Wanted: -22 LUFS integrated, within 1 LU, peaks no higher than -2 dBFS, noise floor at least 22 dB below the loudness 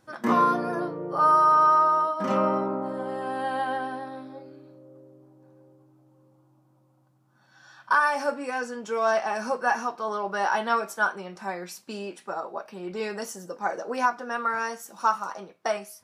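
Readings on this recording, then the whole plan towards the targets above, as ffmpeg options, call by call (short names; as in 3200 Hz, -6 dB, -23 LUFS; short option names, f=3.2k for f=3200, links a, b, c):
loudness -26.0 LUFS; peak -11.0 dBFS; loudness target -22.0 LUFS
-> -af "volume=4dB"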